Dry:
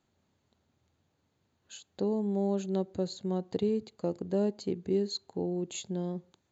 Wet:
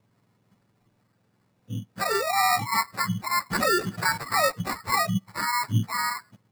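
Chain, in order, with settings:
frequency axis turned over on the octave scale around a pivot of 880 Hz
decimation without filtering 14×
0:03.50–0:04.18: envelope flattener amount 50%
level +8.5 dB

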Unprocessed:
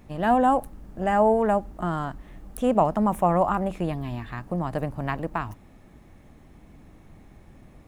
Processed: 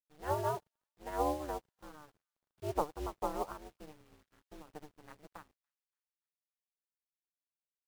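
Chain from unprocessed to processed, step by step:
low-pass filter 3,400 Hz 12 dB per octave
ring modulation 150 Hz
bit reduction 6 bits
on a send: delay with a high-pass on its return 287 ms, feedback 54%, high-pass 2,100 Hz, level −12.5 dB
on the sum: expander for the loud parts 2.5 to 1, over −44 dBFS
level −7.5 dB

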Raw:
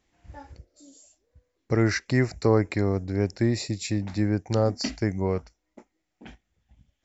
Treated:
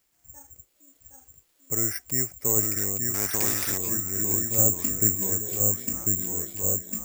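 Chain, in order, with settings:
0:04.58–0:05.15: low-shelf EQ 420 Hz +10 dB
in parallel at −11 dB: bit-depth reduction 8 bits, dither triangular
on the sum: delay with pitch and tempo change per echo 746 ms, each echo −1 semitone, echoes 2
on a send: echo through a band-pass that steps 688 ms, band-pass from 3,400 Hz, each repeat −1.4 octaves, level −1 dB
on the sum: bad sample-rate conversion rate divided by 6×, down filtered, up zero stuff
0:03.14–0:03.78: every bin compressed towards the loudest bin 2 to 1
level −14 dB

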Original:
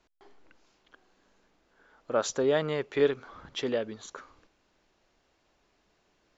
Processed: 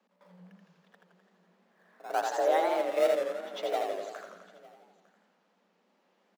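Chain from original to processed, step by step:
high-shelf EQ 5,100 Hz −12 dB
echo ahead of the sound 99 ms −15 dB
in parallel at −9 dB: sample-and-hold swept by an LFO 17×, swing 160% 1.1 Hz
on the sum: frequency shifter +180 Hz
on a send: single-tap delay 905 ms −23.5 dB
on the sum: feedback echo with a swinging delay time 84 ms, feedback 64%, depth 136 cents, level −4 dB
level −4.5 dB

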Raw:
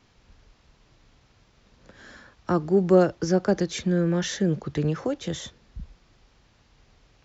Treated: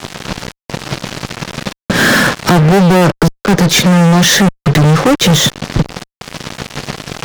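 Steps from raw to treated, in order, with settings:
low-pass filter 6,900 Hz 12 dB per octave
low shelf with overshoot 100 Hz −14 dB, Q 3
downward compressor 3 to 1, threshold −43 dBFS, peak gain reduction 24 dB
gate pattern "xxx.xxxxxx.xxxxx" 87 BPM −60 dB
fuzz pedal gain 53 dB, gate −57 dBFS
level +7 dB

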